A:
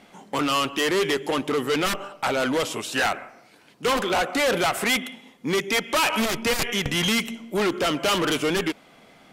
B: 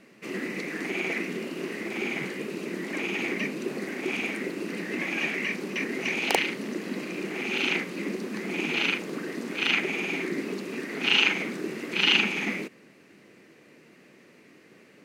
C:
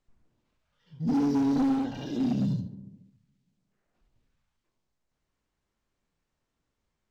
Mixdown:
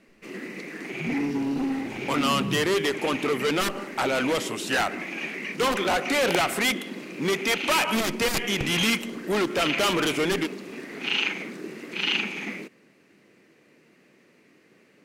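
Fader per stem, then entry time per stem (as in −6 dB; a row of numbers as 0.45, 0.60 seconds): −1.5, −4.0, −2.5 decibels; 1.75, 0.00, 0.00 seconds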